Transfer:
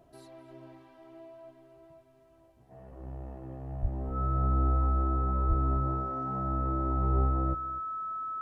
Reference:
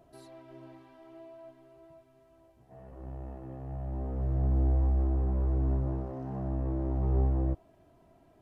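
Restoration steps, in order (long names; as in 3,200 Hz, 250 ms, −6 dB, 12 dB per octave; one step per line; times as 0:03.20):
notch filter 1,300 Hz, Q 30
high-pass at the plosives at 0:03.81/0:05.48
echo removal 250 ms −18 dB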